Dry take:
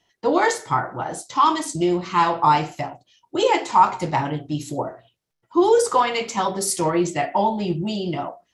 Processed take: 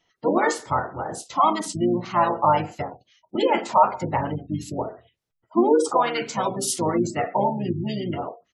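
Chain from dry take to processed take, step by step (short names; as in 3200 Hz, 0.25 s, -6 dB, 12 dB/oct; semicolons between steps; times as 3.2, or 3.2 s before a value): spectral gate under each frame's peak -25 dB strong; harmoniser -7 st -6 dB, -4 st -16 dB; gain -3 dB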